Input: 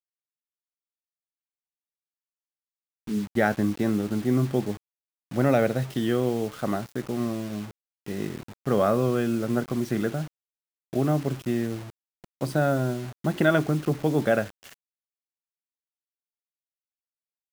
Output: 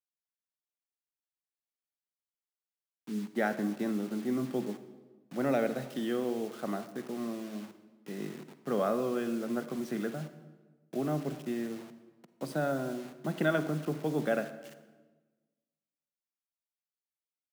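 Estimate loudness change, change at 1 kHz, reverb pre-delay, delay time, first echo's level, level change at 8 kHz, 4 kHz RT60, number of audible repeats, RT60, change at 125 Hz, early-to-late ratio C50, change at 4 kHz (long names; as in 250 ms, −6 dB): −8.0 dB, −7.0 dB, 40 ms, no echo audible, no echo audible, −7.5 dB, 0.95 s, no echo audible, 1.3 s, −12.5 dB, 12.0 dB, −7.5 dB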